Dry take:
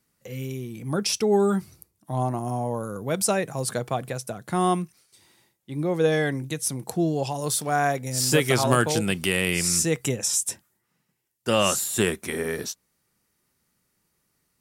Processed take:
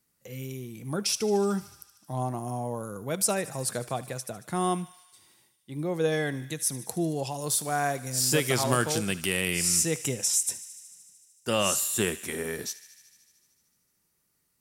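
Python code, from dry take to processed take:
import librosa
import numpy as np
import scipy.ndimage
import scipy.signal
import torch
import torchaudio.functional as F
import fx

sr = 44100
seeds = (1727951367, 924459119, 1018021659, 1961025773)

p1 = fx.high_shelf(x, sr, hz=5500.0, db=6.0)
p2 = p1 + fx.echo_thinned(p1, sr, ms=75, feedback_pct=80, hz=840.0, wet_db=-17.0, dry=0)
y = F.gain(torch.from_numpy(p2), -5.0).numpy()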